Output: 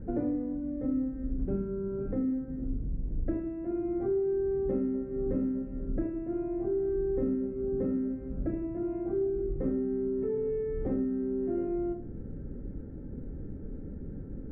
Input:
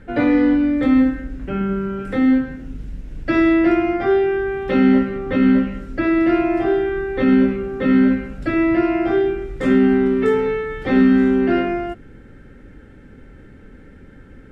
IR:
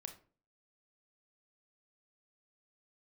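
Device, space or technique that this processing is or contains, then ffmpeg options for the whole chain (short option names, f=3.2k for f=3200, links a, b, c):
television next door: -filter_complex "[0:a]acompressor=threshold=-30dB:ratio=6,lowpass=450[a];[1:a]atrim=start_sample=2205[b];[a][b]afir=irnorm=-1:irlink=0,volume=7.5dB"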